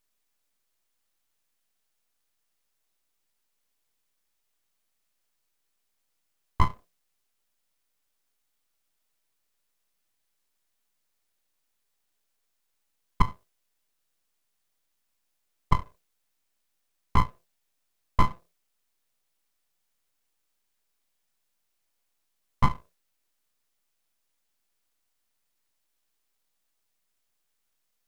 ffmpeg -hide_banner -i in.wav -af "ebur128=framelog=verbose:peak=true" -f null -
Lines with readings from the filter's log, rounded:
Integrated loudness:
  I:         -29.8 LUFS
  Threshold: -41.0 LUFS
Loudness range:
  LRA:         5.2 LU
  Threshold: -57.3 LUFS
  LRA low:   -39.4 LUFS
  LRA high:  -34.2 LUFS
True peak:
  Peak:       -4.8 dBFS